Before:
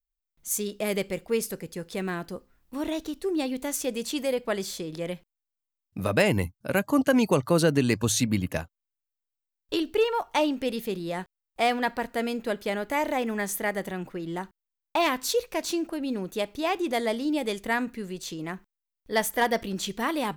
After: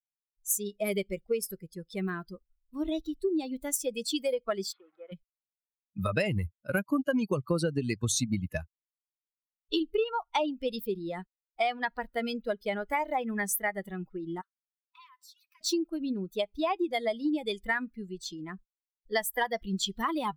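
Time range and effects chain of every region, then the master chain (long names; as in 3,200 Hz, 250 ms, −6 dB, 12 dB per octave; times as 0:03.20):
0:04.72–0:05.12: hold until the input has moved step −36.5 dBFS + band-pass filter 550–2,700 Hz + high-frequency loss of the air 220 metres
0:14.41–0:15.61: linear-phase brick-wall high-pass 970 Hz + downward compressor 3 to 1, threshold −47 dBFS
whole clip: spectral dynamics exaggerated over time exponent 2; downward compressor 6 to 1, threshold −35 dBFS; level +9 dB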